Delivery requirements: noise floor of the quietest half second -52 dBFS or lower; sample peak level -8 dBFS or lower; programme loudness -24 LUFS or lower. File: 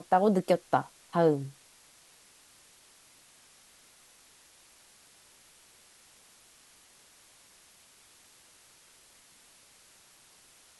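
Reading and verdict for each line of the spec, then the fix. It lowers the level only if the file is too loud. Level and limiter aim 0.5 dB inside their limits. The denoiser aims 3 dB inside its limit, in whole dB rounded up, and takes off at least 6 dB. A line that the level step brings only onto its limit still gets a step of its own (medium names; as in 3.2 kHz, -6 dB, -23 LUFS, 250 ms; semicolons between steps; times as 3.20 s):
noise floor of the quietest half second -59 dBFS: pass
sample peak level -10.5 dBFS: pass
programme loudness -28.0 LUFS: pass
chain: none needed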